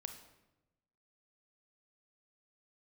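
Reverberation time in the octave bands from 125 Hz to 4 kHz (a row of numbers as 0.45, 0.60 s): 1.3, 1.2, 1.1, 0.90, 0.80, 0.70 s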